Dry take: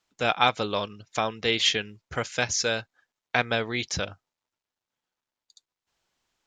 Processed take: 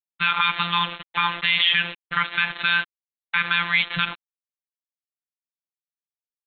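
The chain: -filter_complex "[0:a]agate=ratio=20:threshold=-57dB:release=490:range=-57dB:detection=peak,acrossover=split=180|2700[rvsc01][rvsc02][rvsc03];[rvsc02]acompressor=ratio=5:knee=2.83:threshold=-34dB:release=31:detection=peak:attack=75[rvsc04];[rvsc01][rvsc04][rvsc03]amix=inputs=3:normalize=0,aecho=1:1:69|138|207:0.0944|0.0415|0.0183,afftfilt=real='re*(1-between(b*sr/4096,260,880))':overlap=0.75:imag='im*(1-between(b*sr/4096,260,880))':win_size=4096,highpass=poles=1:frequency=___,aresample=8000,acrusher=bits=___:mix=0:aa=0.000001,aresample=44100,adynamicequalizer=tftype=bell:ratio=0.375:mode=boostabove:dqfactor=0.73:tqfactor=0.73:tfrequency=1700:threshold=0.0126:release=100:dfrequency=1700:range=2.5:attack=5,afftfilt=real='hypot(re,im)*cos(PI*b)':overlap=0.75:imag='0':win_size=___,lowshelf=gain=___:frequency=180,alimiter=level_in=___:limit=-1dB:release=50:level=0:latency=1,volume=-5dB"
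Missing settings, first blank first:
73, 6, 1024, -11.5, 18.5dB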